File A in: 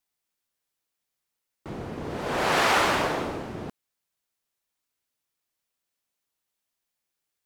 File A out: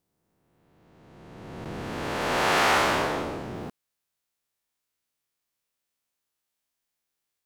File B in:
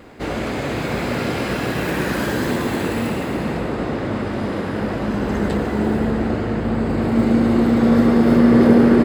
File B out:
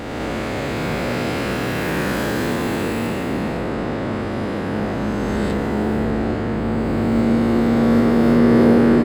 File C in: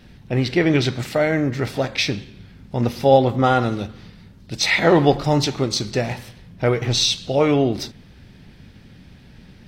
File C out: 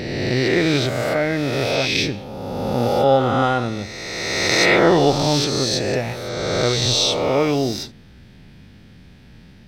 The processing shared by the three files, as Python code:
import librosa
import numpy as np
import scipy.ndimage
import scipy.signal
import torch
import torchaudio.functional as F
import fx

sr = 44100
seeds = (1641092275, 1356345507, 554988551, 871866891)

y = fx.spec_swells(x, sr, rise_s=2.14)
y = y * librosa.db_to_amplitude(-3.5)